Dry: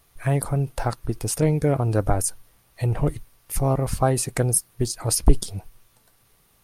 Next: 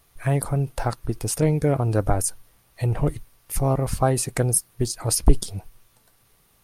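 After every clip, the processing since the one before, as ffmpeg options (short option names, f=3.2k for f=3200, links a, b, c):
-af anull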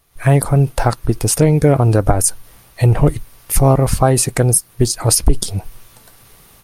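-af "alimiter=limit=-11.5dB:level=0:latency=1:release=139,dynaudnorm=f=110:g=3:m=15dB"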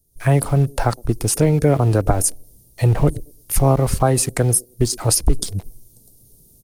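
-filter_complex "[0:a]acrossover=split=260|460|5400[a][b][c][d];[b]aecho=1:1:113|226|339:0.211|0.055|0.0143[e];[c]aeval=exprs='val(0)*gte(abs(val(0)),0.02)':c=same[f];[a][e][f][d]amix=inputs=4:normalize=0,volume=-3.5dB"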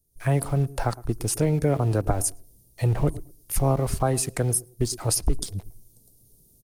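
-filter_complex "[0:a]asplit=2[a][b];[b]adelay=110,lowpass=f=1.1k:p=1,volume=-19dB,asplit=2[c][d];[d]adelay=110,lowpass=f=1.1k:p=1,volume=0.22[e];[a][c][e]amix=inputs=3:normalize=0,volume=-7dB"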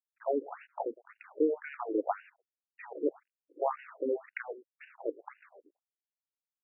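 -af "acrusher=bits=7:mode=log:mix=0:aa=0.000001,aeval=exprs='sgn(val(0))*max(abs(val(0))-0.00944,0)':c=same,afftfilt=real='re*between(b*sr/1024,360*pow(2100/360,0.5+0.5*sin(2*PI*1.9*pts/sr))/1.41,360*pow(2100/360,0.5+0.5*sin(2*PI*1.9*pts/sr))*1.41)':imag='im*between(b*sr/1024,360*pow(2100/360,0.5+0.5*sin(2*PI*1.9*pts/sr))/1.41,360*pow(2100/360,0.5+0.5*sin(2*PI*1.9*pts/sr))*1.41)':win_size=1024:overlap=0.75"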